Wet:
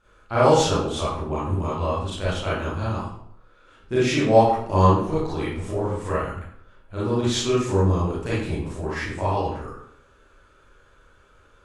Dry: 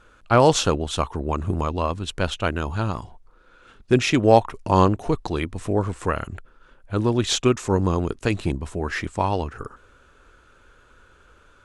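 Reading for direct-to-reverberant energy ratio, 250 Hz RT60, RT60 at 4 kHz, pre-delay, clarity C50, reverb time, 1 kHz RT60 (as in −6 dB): −10.0 dB, 0.70 s, 0.50 s, 30 ms, −1.5 dB, 0.65 s, 0.65 s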